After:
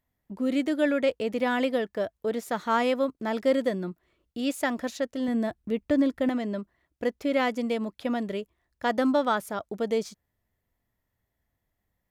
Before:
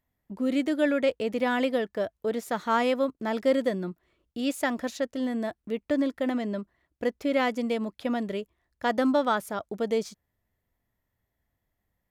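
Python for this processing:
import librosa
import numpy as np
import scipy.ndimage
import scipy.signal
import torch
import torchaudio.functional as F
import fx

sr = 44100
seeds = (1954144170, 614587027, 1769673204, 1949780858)

y = fx.low_shelf(x, sr, hz=190.0, db=10.0, at=(5.28, 6.29))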